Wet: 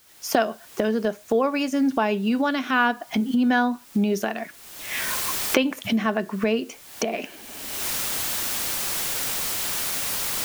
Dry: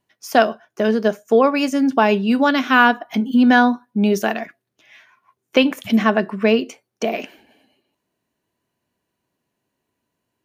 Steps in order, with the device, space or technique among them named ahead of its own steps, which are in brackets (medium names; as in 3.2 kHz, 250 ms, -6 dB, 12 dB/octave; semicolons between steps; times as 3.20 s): cheap recorder with automatic gain (white noise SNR 30 dB; recorder AGC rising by 38 dB/s); trim -7.5 dB